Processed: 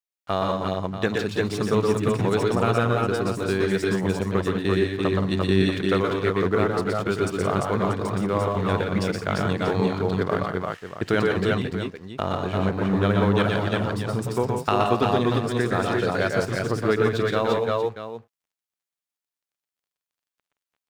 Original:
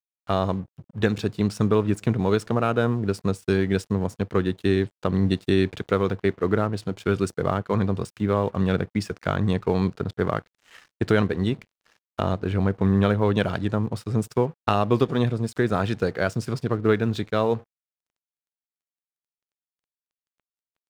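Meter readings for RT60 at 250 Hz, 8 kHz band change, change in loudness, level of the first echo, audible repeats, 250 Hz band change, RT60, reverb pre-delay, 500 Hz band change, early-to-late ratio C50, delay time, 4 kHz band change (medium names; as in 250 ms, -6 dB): no reverb, +4.0 dB, +0.5 dB, -4.0 dB, 4, -0.5 dB, no reverb, no reverb, +2.0 dB, no reverb, 120 ms, +4.0 dB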